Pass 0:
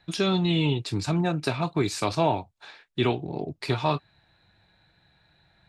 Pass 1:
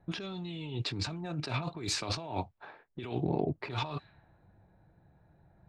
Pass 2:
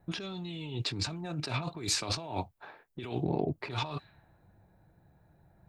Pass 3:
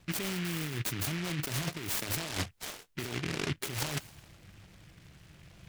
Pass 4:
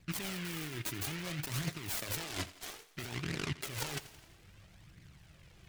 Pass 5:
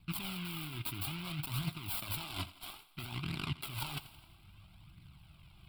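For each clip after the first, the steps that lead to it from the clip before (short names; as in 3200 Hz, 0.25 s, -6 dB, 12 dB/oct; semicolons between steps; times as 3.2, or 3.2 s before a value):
low-pass opened by the level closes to 680 Hz, open at -20 dBFS; negative-ratio compressor -33 dBFS, ratio -1; gain -3 dB
high shelf 8000 Hz +11.5 dB
reverse; compressor 6:1, threshold -39 dBFS, peak gain reduction 13.5 dB; reverse; noise-modulated delay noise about 2100 Hz, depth 0.32 ms; gain +8 dB
flange 0.6 Hz, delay 0.4 ms, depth 2.9 ms, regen +42%; thinning echo 85 ms, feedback 60%, high-pass 190 Hz, level -16.5 dB
fixed phaser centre 1800 Hz, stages 6; gain +1.5 dB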